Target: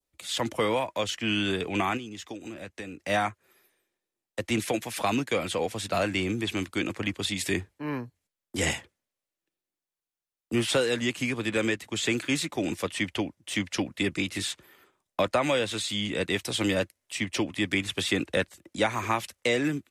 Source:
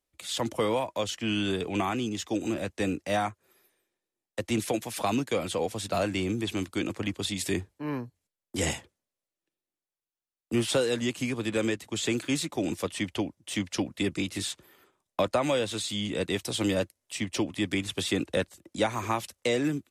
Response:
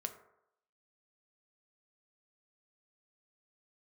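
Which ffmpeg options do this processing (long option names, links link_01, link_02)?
-filter_complex "[0:a]adynamicequalizer=threshold=0.00562:dfrequency=2000:dqfactor=1:tfrequency=2000:tqfactor=1:attack=5:release=100:ratio=0.375:range=3:mode=boostabove:tftype=bell,asettb=1/sr,asplit=3[link_01][link_02][link_03];[link_01]atrim=end=1.974[link_04];[link_02]atrim=start=1.97:end=3,asetpts=PTS-STARTPTS,afade=type=in:duration=0.004:curve=qsin,afade=type=out:start_time=1.026:duration=0.004:curve=qsin,acompressor=threshold=-36dB:ratio=10[link_05];[link_03]atrim=start=2.996[link_06];[link_04][link_05]acrossfade=duration=0.004:curve1=hsin:curve2=qsin[link_07];[link_07][link_06]acrossfade=duration=0.004:curve1=qsin:curve2=hsin"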